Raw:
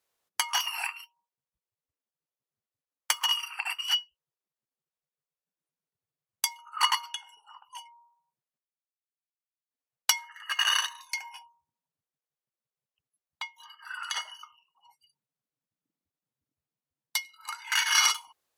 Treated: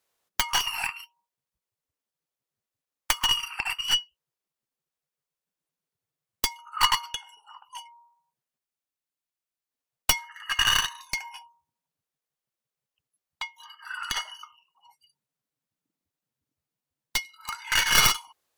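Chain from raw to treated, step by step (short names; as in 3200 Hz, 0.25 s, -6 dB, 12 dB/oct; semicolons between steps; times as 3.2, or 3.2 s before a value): tracing distortion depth 0.2 ms; gain +3 dB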